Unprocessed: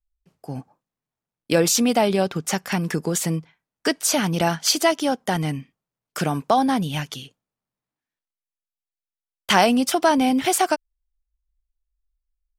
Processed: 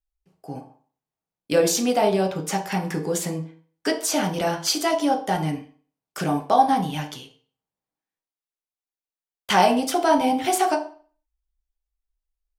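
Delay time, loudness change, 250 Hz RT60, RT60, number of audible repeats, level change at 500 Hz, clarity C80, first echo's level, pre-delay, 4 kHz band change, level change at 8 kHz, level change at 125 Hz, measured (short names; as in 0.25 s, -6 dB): none, -1.5 dB, 0.45 s, 0.45 s, none, 0.0 dB, 15.0 dB, none, 6 ms, -3.5 dB, -4.0 dB, -3.5 dB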